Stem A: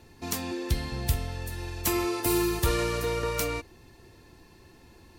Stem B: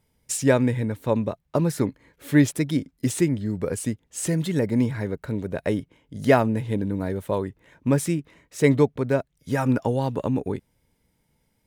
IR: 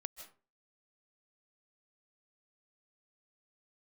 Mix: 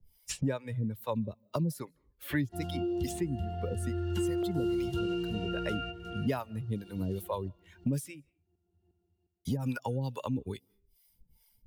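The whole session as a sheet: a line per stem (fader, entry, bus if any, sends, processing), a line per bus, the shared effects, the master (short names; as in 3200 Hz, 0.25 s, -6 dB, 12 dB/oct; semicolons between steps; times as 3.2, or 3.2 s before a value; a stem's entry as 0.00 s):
+0.5 dB, 2.30 s, no send, echo send -16 dB, high shelf 2500 Hz +10.5 dB; octave resonator F, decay 0.16 s; LFO notch saw down 0.47 Hz 570–2600 Hz
-5.0 dB, 0.00 s, muted 8.3–9.45, send -24 dB, no echo send, per-bin expansion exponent 1.5; high shelf 5100 Hz +9.5 dB; harmonic tremolo 2.4 Hz, depth 100%, crossover 530 Hz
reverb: on, RT60 0.35 s, pre-delay 0.115 s
echo: feedback echo 0.356 s, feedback 42%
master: three-band squash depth 100%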